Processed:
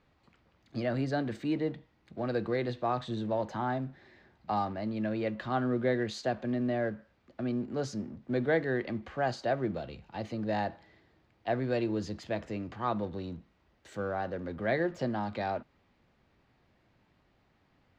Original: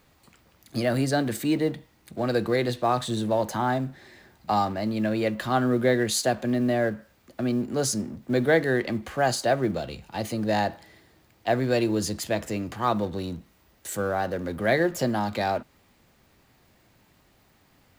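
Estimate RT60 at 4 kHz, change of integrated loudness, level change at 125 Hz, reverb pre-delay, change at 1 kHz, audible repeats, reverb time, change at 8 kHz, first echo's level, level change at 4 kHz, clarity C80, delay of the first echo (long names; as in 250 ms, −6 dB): no reverb audible, −7.0 dB, −6.5 dB, no reverb audible, −7.0 dB, no echo audible, no reverb audible, −21.5 dB, no echo audible, −12.0 dB, no reverb audible, no echo audible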